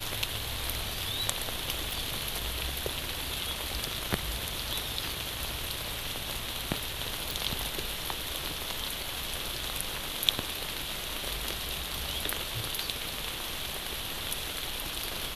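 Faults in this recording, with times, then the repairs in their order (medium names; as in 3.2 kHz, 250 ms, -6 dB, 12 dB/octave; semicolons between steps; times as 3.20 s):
1.91 s: pop
7.31 s: pop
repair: de-click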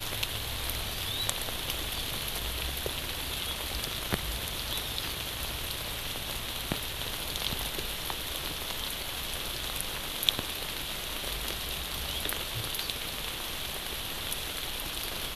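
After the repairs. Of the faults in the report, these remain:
nothing left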